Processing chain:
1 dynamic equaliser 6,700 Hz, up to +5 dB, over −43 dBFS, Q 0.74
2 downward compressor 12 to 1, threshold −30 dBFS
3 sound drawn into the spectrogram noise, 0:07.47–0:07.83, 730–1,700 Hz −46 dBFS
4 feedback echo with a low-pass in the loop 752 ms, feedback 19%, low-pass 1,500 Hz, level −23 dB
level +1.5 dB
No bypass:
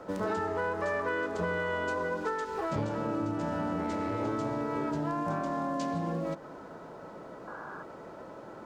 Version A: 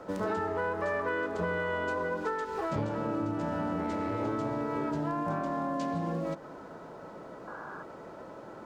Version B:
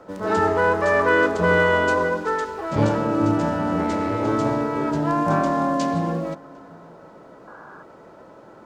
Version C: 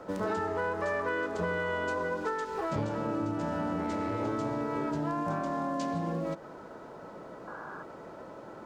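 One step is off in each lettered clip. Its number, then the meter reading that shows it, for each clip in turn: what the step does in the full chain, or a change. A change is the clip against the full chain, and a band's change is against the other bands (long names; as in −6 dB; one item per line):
1, 4 kHz band −1.5 dB
2, average gain reduction 7.5 dB
4, echo-to-direct ratio −26.0 dB to none audible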